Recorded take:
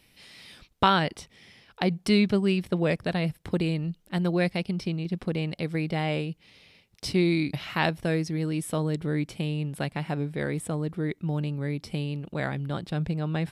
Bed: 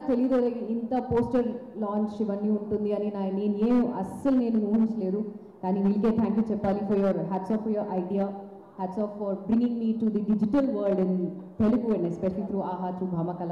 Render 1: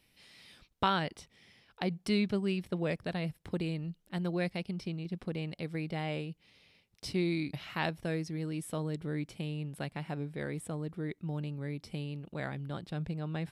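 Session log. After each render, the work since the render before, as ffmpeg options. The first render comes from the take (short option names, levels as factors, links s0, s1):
-af "volume=0.398"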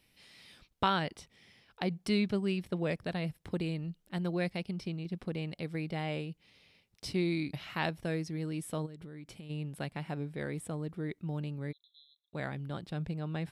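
-filter_complex "[0:a]asplit=3[s0][s1][s2];[s0]afade=t=out:st=8.85:d=0.02[s3];[s1]acompressor=threshold=0.00794:ratio=12:attack=3.2:release=140:knee=1:detection=peak,afade=t=in:st=8.85:d=0.02,afade=t=out:st=9.49:d=0.02[s4];[s2]afade=t=in:st=9.49:d=0.02[s5];[s3][s4][s5]amix=inputs=3:normalize=0,asplit=3[s6][s7][s8];[s6]afade=t=out:st=11.71:d=0.02[s9];[s7]asuperpass=centerf=3700:order=20:qfactor=4.7,afade=t=in:st=11.71:d=0.02,afade=t=out:st=12.33:d=0.02[s10];[s8]afade=t=in:st=12.33:d=0.02[s11];[s9][s10][s11]amix=inputs=3:normalize=0"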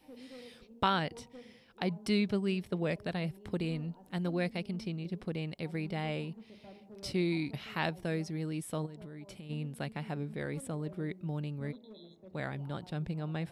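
-filter_complex "[1:a]volume=0.0473[s0];[0:a][s0]amix=inputs=2:normalize=0"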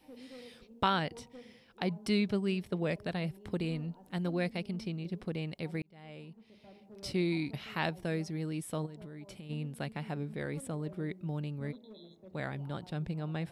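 -filter_complex "[0:a]asplit=2[s0][s1];[s0]atrim=end=5.82,asetpts=PTS-STARTPTS,afade=t=out:st=5.816:d=0.004:c=hsin[s2];[s1]atrim=start=5.82,asetpts=PTS-STARTPTS,afade=t=in:d=1.3[s3];[s2][s3]concat=n=2:v=0:a=1"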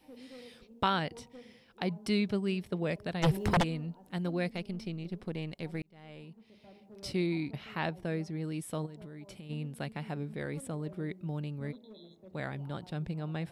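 -filter_complex "[0:a]asplit=3[s0][s1][s2];[s0]afade=t=out:st=3.22:d=0.02[s3];[s1]aeval=exprs='0.0891*sin(PI/2*5.01*val(0)/0.0891)':c=same,afade=t=in:st=3.22:d=0.02,afade=t=out:st=3.62:d=0.02[s4];[s2]afade=t=in:st=3.62:d=0.02[s5];[s3][s4][s5]amix=inputs=3:normalize=0,asettb=1/sr,asplit=3[s6][s7][s8];[s6]atrim=end=4.514[s9];[s7]atrim=start=4.51:end=6.22,asetpts=PTS-STARTPTS,afade=t=in:d=0.004:c=qsin,afade=t=out:st=1.706:d=0.004:c=qsin,aeval=exprs='if(lt(val(0),0),0.708*val(0),val(0))':c=same[s10];[s8]atrim=start=6.216[s11];[s9][s10]acrossfade=d=0.004:c1=hsin:c2=qsin[s12];[s12][s11]acrossfade=d=0.004:c1=qsin:c2=hsin,asettb=1/sr,asplit=3[s13][s14][s15];[s13]atrim=end=7.264[s16];[s14]atrim=start=7.26:end=8.44,asetpts=PTS-STARTPTS,afade=t=in:d=0.004:c=qsin,afade=t=out:st=1.176:d=0.004:c=qsin,highshelf=f=3500:g=-7.5[s17];[s15]atrim=start=8.436[s18];[s16][s17]acrossfade=d=0.004:c1=hsin:c2=qsin[s19];[s19][s18]acrossfade=d=0.004:c1=qsin:c2=hsin"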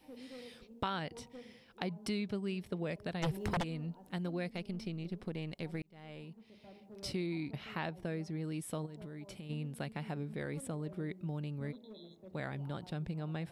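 -af "acompressor=threshold=0.0158:ratio=2.5"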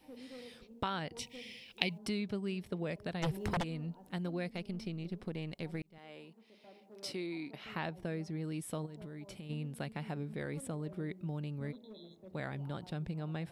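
-filter_complex "[0:a]asettb=1/sr,asplit=3[s0][s1][s2];[s0]atrim=end=1.194[s3];[s1]atrim=start=1.19:end=1.98,asetpts=PTS-STARTPTS,afade=t=in:d=0.004:c=qsin,afade=t=out:st=0.786:d=0.004:c=qsin,highshelf=f=1900:t=q:w=3:g=9[s4];[s2]atrim=start=1.976[s5];[s3][s4]acrossfade=d=0.004:c1=hsin:c2=qsin[s6];[s6][s5]acrossfade=d=0.004:c1=qsin:c2=hsin,asettb=1/sr,asplit=3[s7][s8][s9];[s7]atrim=end=5.984[s10];[s8]atrim=start=5.98:end=7.65,asetpts=PTS-STARTPTS,afade=t=in:d=0.004:c=qsin,afade=t=out:st=1.666:d=0.004:c=qsin,highpass=280[s11];[s9]atrim=start=7.646[s12];[s10][s11]acrossfade=d=0.004:c1=hsin:c2=qsin[s13];[s13][s12]acrossfade=d=0.004:c1=qsin:c2=hsin"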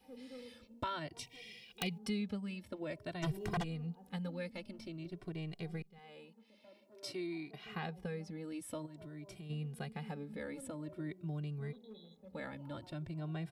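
-filter_complex "[0:a]aeval=exprs='0.0794*(abs(mod(val(0)/0.0794+3,4)-2)-1)':c=same,asplit=2[s0][s1];[s1]adelay=2,afreqshift=0.5[s2];[s0][s2]amix=inputs=2:normalize=1"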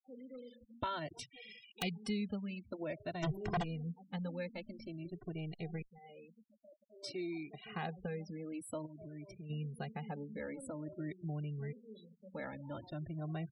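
-af "afftfilt=real='re*gte(hypot(re,im),0.00398)':imag='im*gte(hypot(re,im),0.00398)':win_size=1024:overlap=0.75,adynamicequalizer=threshold=0.00126:dfrequency=700:dqfactor=2.8:tfrequency=700:tqfactor=2.8:attack=5:release=100:ratio=0.375:range=2:mode=boostabove:tftype=bell"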